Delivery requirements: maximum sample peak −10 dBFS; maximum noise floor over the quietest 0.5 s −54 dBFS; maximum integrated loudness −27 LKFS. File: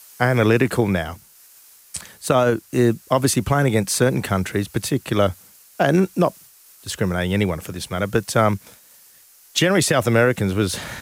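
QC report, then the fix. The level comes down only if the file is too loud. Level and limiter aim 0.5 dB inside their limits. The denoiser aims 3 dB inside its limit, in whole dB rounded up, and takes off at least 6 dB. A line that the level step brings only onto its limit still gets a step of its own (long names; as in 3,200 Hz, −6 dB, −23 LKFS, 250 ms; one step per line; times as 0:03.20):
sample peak −4.0 dBFS: out of spec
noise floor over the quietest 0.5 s −50 dBFS: out of spec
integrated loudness −20.0 LKFS: out of spec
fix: level −7.5 dB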